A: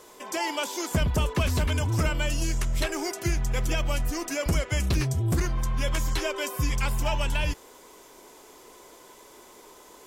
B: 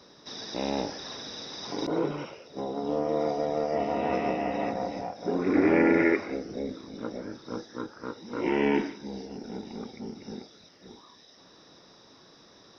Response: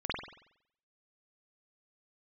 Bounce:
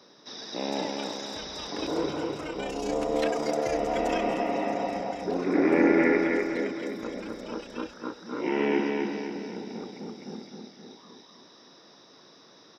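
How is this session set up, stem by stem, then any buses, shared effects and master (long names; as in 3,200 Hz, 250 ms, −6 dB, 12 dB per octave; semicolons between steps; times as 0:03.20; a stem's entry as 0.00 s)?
0:02.33 −9.5 dB → 0:02.96 −1.5 dB → 0:04.15 −1.5 dB → 0:04.48 −14 dB, 0.40 s, no send, echo send −13.5 dB, three-way crossover with the lows and the highs turned down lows −16 dB, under 440 Hz, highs −14 dB, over 6,900 Hz; amplitude modulation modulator 30 Hz, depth 60%
−1.0 dB, 0.00 s, no send, echo send −3.5 dB, high-pass filter 170 Hz 12 dB per octave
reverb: not used
echo: repeating echo 257 ms, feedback 50%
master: no processing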